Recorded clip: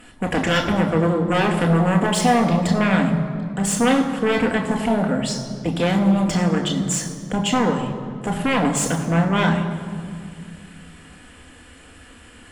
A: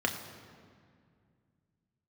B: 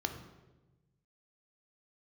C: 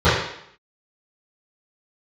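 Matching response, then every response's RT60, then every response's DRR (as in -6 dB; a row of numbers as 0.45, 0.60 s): A; 2.2, 1.1, 0.70 s; 2.0, 5.5, -17.5 dB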